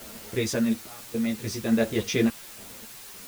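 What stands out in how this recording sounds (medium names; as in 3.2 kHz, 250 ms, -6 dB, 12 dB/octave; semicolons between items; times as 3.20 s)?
random-step tremolo, depth 100%; a quantiser's noise floor 8-bit, dither triangular; a shimmering, thickened sound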